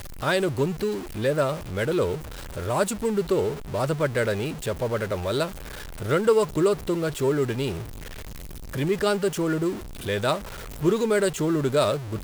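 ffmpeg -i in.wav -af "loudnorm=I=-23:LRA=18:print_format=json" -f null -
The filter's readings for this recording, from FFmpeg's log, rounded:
"input_i" : "-25.3",
"input_tp" : "-8.3",
"input_lra" : "1.8",
"input_thresh" : "-35.6",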